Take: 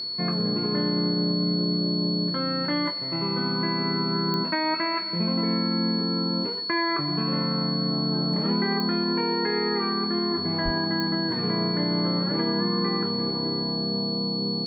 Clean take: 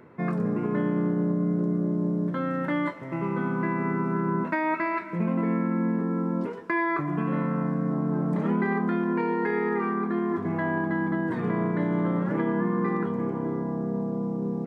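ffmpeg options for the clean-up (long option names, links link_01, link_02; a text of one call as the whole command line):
ffmpeg -i in.wav -filter_complex "[0:a]adeclick=threshold=4,bandreject=frequency=4400:width=30,asplit=3[link_01][link_02][link_03];[link_01]afade=type=out:start_time=10.64:duration=0.02[link_04];[link_02]highpass=frequency=140:width=0.5412,highpass=frequency=140:width=1.3066,afade=type=in:start_time=10.64:duration=0.02,afade=type=out:start_time=10.76:duration=0.02[link_05];[link_03]afade=type=in:start_time=10.76:duration=0.02[link_06];[link_04][link_05][link_06]amix=inputs=3:normalize=0" out.wav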